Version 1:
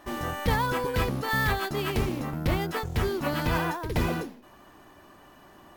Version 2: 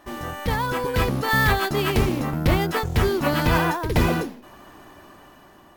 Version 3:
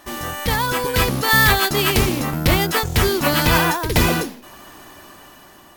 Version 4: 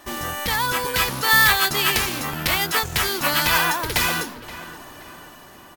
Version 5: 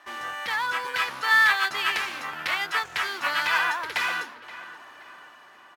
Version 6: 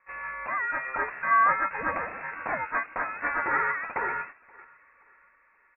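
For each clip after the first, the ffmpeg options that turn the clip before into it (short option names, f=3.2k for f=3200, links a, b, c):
-af "dynaudnorm=f=260:g=7:m=7dB"
-af "equalizer=f=13k:t=o:w=3:g=11,volume=2dB"
-filter_complex "[0:a]acrossover=split=810|5200[a][b][c];[a]acompressor=threshold=-29dB:ratio=6[d];[d][b][c]amix=inputs=3:normalize=0,asplit=2[e][f];[f]adelay=525,lowpass=f=2.9k:p=1,volume=-15dB,asplit=2[g][h];[h]adelay=525,lowpass=f=2.9k:p=1,volume=0.46,asplit=2[i][j];[j]adelay=525,lowpass=f=2.9k:p=1,volume=0.46,asplit=2[k][l];[l]adelay=525,lowpass=f=2.9k:p=1,volume=0.46[m];[e][g][i][k][m]amix=inputs=5:normalize=0"
-af "bandpass=f=1.6k:t=q:w=1:csg=0,volume=-1.5dB"
-af "highpass=260,agate=range=-10dB:threshold=-38dB:ratio=16:detection=peak,lowpass=f=2.5k:t=q:w=0.5098,lowpass=f=2.5k:t=q:w=0.6013,lowpass=f=2.5k:t=q:w=0.9,lowpass=f=2.5k:t=q:w=2.563,afreqshift=-2900,volume=-2dB"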